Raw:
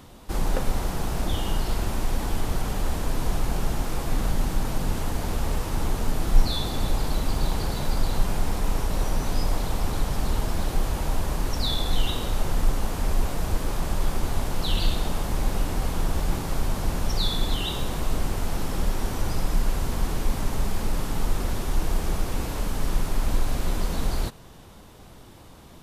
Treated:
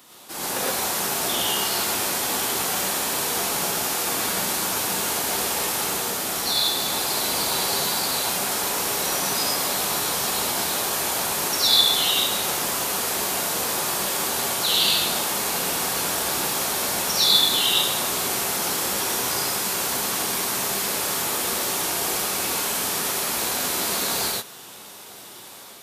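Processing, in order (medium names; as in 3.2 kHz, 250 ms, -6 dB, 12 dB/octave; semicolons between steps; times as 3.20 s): level rider gain up to 5 dB; high-pass 190 Hz 12 dB/octave; tilt EQ +3 dB/octave; gated-style reverb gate 140 ms rising, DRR -4.5 dB; trim -3.5 dB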